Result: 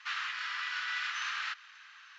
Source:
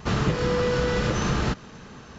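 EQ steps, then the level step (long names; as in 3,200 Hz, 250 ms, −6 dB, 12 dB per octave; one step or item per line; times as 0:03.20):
inverse Chebyshev high-pass filter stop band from 560 Hz, stop band 50 dB
low-pass filter 3,400 Hz 12 dB per octave
0.0 dB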